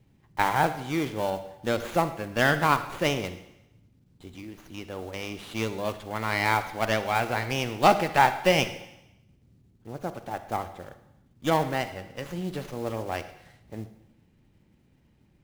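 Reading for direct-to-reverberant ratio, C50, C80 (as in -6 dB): 11.0 dB, 12.0 dB, 14.0 dB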